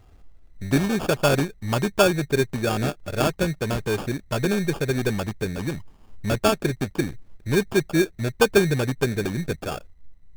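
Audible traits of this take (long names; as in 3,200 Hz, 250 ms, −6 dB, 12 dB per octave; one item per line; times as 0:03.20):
aliases and images of a low sample rate 2,000 Hz, jitter 0%
Nellymoser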